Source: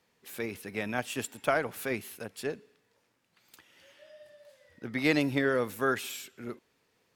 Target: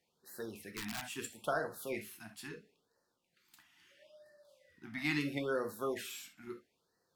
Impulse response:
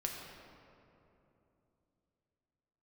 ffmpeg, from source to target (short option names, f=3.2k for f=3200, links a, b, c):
-filter_complex "[0:a]lowshelf=f=260:g=-3.5[a];[1:a]atrim=start_sample=2205,atrim=end_sample=3528[b];[a][b]afir=irnorm=-1:irlink=0,asettb=1/sr,asplit=3[c][d][e];[c]atrim=end=0.604[f];[d]atrim=start=0.6:end=1.09,asetpts=PTS-STARTPTS,afade=t=in:d=0.004:c=qsin,afade=t=out:st=0.486:d=0.004:c=qsin,aeval=exprs='(mod(25.1*val(0)+1,2)-1)/25.1':c=same[g];[e]atrim=start=1.086[h];[f][g]acrossfade=d=0.004:c1=hsin:c2=qsin[i];[i][h]acrossfade=d=0.004:c1=qsin:c2=hsin,afftfilt=real='re*(1-between(b*sr/1024,430*pow(2800/430,0.5+0.5*sin(2*PI*0.75*pts/sr))/1.41,430*pow(2800/430,0.5+0.5*sin(2*PI*0.75*pts/sr))*1.41))':imag='im*(1-between(b*sr/1024,430*pow(2800/430,0.5+0.5*sin(2*PI*0.75*pts/sr))/1.41,430*pow(2800/430,0.5+0.5*sin(2*PI*0.75*pts/sr))*1.41))':win_size=1024:overlap=0.75,volume=-5.5dB"